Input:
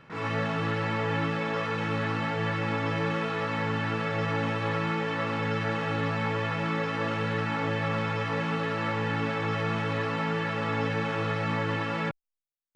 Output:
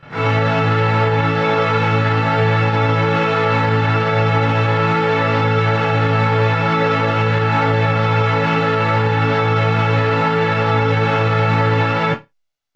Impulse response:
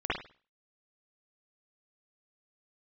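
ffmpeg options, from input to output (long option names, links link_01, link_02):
-filter_complex "[1:a]atrim=start_sample=2205,asetrate=83790,aresample=44100[link_01];[0:a][link_01]afir=irnorm=-1:irlink=0,alimiter=level_in=17dB:limit=-1dB:release=50:level=0:latency=1,volume=-6dB"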